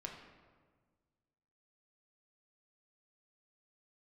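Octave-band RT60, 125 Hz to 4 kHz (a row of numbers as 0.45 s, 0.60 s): 2.1 s, 1.9 s, 1.6 s, 1.5 s, 1.2 s, 0.90 s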